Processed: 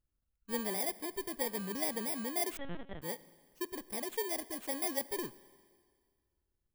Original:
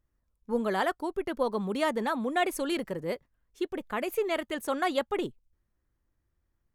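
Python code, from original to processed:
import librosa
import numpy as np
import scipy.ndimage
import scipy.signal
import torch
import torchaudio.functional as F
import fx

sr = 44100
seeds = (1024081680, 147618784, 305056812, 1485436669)

y = fx.bit_reversed(x, sr, seeds[0], block=32)
y = fx.rev_schroeder(y, sr, rt60_s=1.9, comb_ms=33, drr_db=18.0)
y = fx.lpc_vocoder(y, sr, seeds[1], excitation='pitch_kept', order=8, at=(2.57, 3.02))
y = F.gain(torch.from_numpy(y), -7.5).numpy()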